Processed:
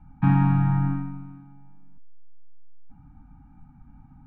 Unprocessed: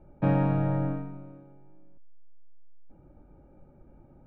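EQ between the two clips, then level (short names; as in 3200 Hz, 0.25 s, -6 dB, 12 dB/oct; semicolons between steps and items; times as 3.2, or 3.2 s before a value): Chebyshev band-stop 280–760 Hz, order 4; LPF 2700 Hz 6 dB/oct; bell 510 Hz -12.5 dB 0.27 oct; +6.5 dB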